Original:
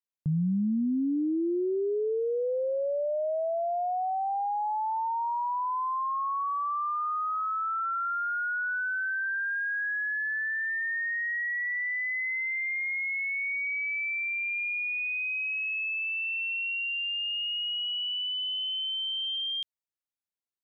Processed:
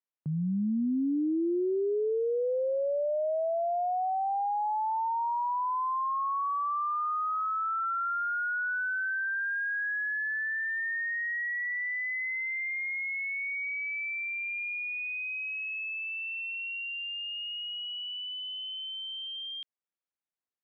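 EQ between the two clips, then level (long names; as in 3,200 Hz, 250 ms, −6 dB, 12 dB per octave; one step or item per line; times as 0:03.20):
band-pass filter 180–2,300 Hz
0.0 dB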